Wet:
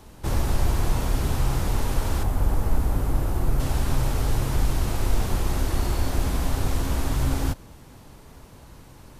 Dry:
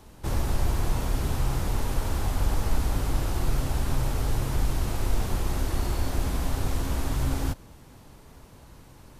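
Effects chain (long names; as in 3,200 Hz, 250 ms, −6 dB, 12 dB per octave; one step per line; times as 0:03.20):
0:02.23–0:03.60: parametric band 4,400 Hz −9.5 dB 2.6 octaves
level +3 dB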